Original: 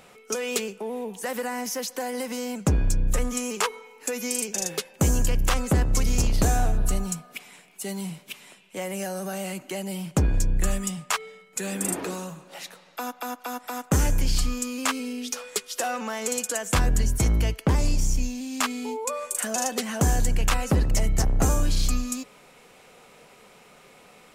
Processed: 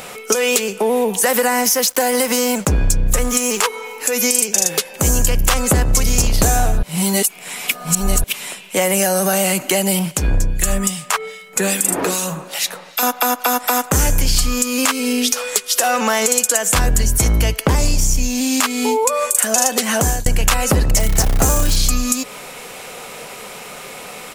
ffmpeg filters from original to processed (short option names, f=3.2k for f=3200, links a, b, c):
-filter_complex "[0:a]asettb=1/sr,asplit=3[a][b][c];[a]atrim=end=1.624[d];[b]atrim=start=1.62:end=3.64,asetpts=PTS-STARTPTS,afade=t=in:d=0.004:c=qsin,afade=t=out:st=2.016:d=0.004:c=qsin,aeval=exprs='sgn(val(0))*max(abs(val(0))-0.00422,0)':c=same[e];[c]atrim=start=3.636[f];[d][e]acrossfade=d=0.004:c1=hsin:c2=qsin[g];[g][f]acrossfade=d=0.004:c1=qsin:c2=hsin,asettb=1/sr,asplit=3[h][i][j];[h]atrim=end=9.994[k];[i]atrim=start=9.99:end=13.03,asetpts=PTS-STARTPTS,afade=t=in:d=0.004:c=qsin,afade=t=out:st=3.036:d=0.004:c=qsin,acrossover=split=2000[l][m];[l]aeval=exprs='val(0)*(1-0.7/2+0.7/2*cos(2*PI*2.5*n/s))':c=same[n];[m]aeval=exprs='val(0)*(1-0.7/2-0.7/2*cos(2*PI*2.5*n/s))':c=same[o];[n][o]amix=inputs=2:normalize=0[p];[j]atrim=start=13.026[q];[k][p]acrossfade=d=0.004:c1=hsin:c2=qsin[r];[r][q]acrossfade=d=0.004:c1=qsin:c2=hsin,asettb=1/sr,asplit=3[s][t][u];[s]atrim=end=20.994[v];[t]atrim=start=20.99:end=21.76,asetpts=PTS-STARTPTS,afade=t=in:d=0.004:c=qsin,afade=t=out:st=0.766:d=0.004:c=qsin,acrusher=bits=7:dc=4:mix=0:aa=0.000001[w];[u]atrim=start=21.756[x];[v][w]acrossfade=d=0.004:c1=hsin:c2=qsin[y];[y][x]acrossfade=d=0.004:c1=qsin:c2=hsin,asplit=4[z][aa][ab][ac];[z]atrim=end=6.832[ad];[aa]atrim=start=6.828:end=8.242,asetpts=PTS-STARTPTS,areverse[ae];[ab]atrim=start=8.238:end=20.26,asetpts=PTS-STARTPTS,afade=t=out:st=11.572:d=0.45:c=qsin[af];[ac]atrim=start=20.26,asetpts=PTS-STARTPTS,afade=t=in:d=0.004:c=hsin[ag];[ad][ae]acrossfade=d=0.004:c1=hsin:c2=hsin[ah];[af][ag]concat=n=2:v=0:a=1[ai];[ah][ai]acrossfade=d=0.004:c1=hsin:c2=hsin,firequalizer=gain_entry='entry(330,0);entry(490,3);entry(12000,10)':delay=0.05:min_phase=1,acompressor=threshold=-28dB:ratio=4,alimiter=level_in=16dB:limit=-1dB:release=50:level=0:latency=1,volume=-1dB"